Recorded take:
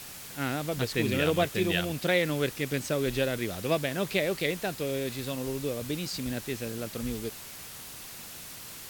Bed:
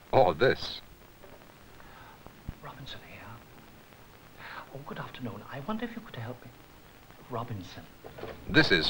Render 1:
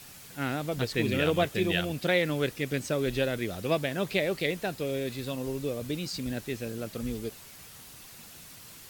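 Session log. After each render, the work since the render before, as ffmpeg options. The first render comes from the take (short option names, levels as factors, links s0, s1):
-af "afftdn=nr=6:nf=-44"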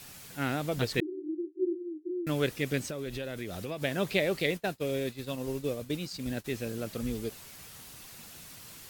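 -filter_complex "[0:a]asettb=1/sr,asplit=3[s0][s1][s2];[s0]atrim=end=1.004[s3];[s1]atrim=start=1:end=2.27,asetpts=PTS-STARTPTS,afade=t=in:d=0.004:c=qsin,afade=t=out:st=1.266:d=0.004:c=qsin,asuperpass=centerf=340:order=12:qfactor=4.2[s4];[s2]atrim=start=2.266[s5];[s3][s4]acrossfade=d=0.004:c1=hsin:c2=qsin[s6];[s6][s5]acrossfade=d=0.004:c1=qsin:c2=hsin,asettb=1/sr,asplit=3[s7][s8][s9];[s7]atrim=end=2.844[s10];[s8]atrim=start=2.84:end=3.82,asetpts=PTS-STARTPTS,afade=t=in:d=0.004:c=qsin,afade=t=out:st=0.976:d=0.004:c=qsin,acompressor=threshold=0.02:ratio=4:attack=3.2:release=140:knee=1:detection=peak[s11];[s9]atrim=start=3.816[s12];[s10][s11]acrossfade=d=0.004:c1=hsin:c2=qsin[s13];[s13][s12]acrossfade=d=0.004:c1=qsin:c2=hsin,asplit=3[s14][s15][s16];[s14]afade=t=out:st=4.56:d=0.02[s17];[s15]agate=range=0.0224:threshold=0.0251:ratio=3:release=100:detection=peak,afade=t=in:st=4.56:d=0.02,afade=t=out:st=6.44:d=0.02[s18];[s16]afade=t=in:st=6.44:d=0.02[s19];[s17][s18][s19]amix=inputs=3:normalize=0"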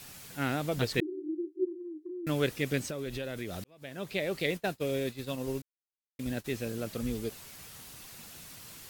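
-filter_complex "[0:a]asplit=3[s0][s1][s2];[s0]afade=t=out:st=1.64:d=0.02[s3];[s1]acompressor=threshold=0.0112:ratio=3:attack=3.2:release=140:knee=1:detection=peak,afade=t=in:st=1.64:d=0.02,afade=t=out:st=2.23:d=0.02[s4];[s2]afade=t=in:st=2.23:d=0.02[s5];[s3][s4][s5]amix=inputs=3:normalize=0,asplit=4[s6][s7][s8][s9];[s6]atrim=end=3.64,asetpts=PTS-STARTPTS,afade=t=out:st=3.636:d=0.004:c=hsin[s10];[s7]atrim=start=3.64:end=5.62,asetpts=PTS-STARTPTS,afade=t=in:d=0.99,afade=t=out:st=1.976:d=0.004:c=hsin[s11];[s8]atrim=start=5.62:end=6.19,asetpts=PTS-STARTPTS,volume=0[s12];[s9]atrim=start=6.19,asetpts=PTS-STARTPTS,afade=t=in:d=0.004:c=hsin[s13];[s10][s11][s12][s13]concat=n=4:v=0:a=1"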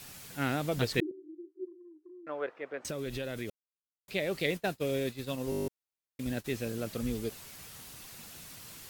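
-filter_complex "[0:a]asettb=1/sr,asplit=3[s0][s1][s2];[s0]atrim=end=1.114[s3];[s1]atrim=start=1.11:end=2.85,asetpts=PTS-STARTPTS,afade=t=in:d=0.004:c=qsin,afade=t=out:st=1.736:d=0.004:c=qsin,asuperpass=centerf=870:order=4:qfactor=0.89[s4];[s2]atrim=start=2.846[s5];[s3][s4]acrossfade=d=0.004:c1=hsin:c2=qsin[s6];[s6][s5]acrossfade=d=0.004:c1=qsin:c2=hsin,asplit=12[s7][s8][s9][s10][s11][s12][s13][s14][s15][s16][s17][s18];[s7]atrim=end=3.5,asetpts=PTS-STARTPTS,afade=t=out:st=3.496:d=0.004:c=hsin[s19];[s8]atrim=start=3.5:end=4.08,asetpts=PTS-STARTPTS,volume=0[s20];[s9]atrim=start=4.08:end=5.522,asetpts=PTS-STARTPTS,afade=t=in:d=0.004:c=hsin[s21];[s10]atrim=start=5.498:end=5.522[s22];[s11]atrim=start=5.498:end=5.522[s23];[s12]atrim=start=5.498:end=5.522[s24];[s13]atrim=start=5.498:end=5.522[s25];[s14]atrim=start=5.498:end=5.522[s26];[s15]atrim=start=5.498:end=5.522[s27];[s16]atrim=start=5.498:end=5.522[s28];[s17]atrim=start=5.498:end=5.522[s29];[s18]atrim=start=5.678[s30];[s19][s20][s21]concat=n=3:v=0:a=1[s31];[s31][s22]acrossfade=d=0.004:c1=hsin:c2=hsin[s32];[s32][s23]acrossfade=d=0.004:c1=hsin:c2=hsin[s33];[s33][s24]acrossfade=d=0.004:c1=hsin:c2=hsin[s34];[s34][s25]acrossfade=d=0.004:c1=hsin:c2=hsin[s35];[s35][s26]acrossfade=d=0.004:c1=hsin:c2=hsin[s36];[s36][s27]acrossfade=d=0.004:c1=hsin:c2=hsin[s37];[s37][s28]acrossfade=d=0.004:c1=hsin:c2=hsin[s38];[s38][s29]acrossfade=d=0.004:c1=hsin:c2=hsin[s39];[s39][s30]acrossfade=d=0.004:c1=hsin:c2=hsin"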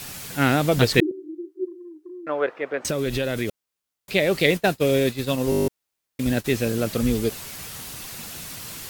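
-af "volume=3.98"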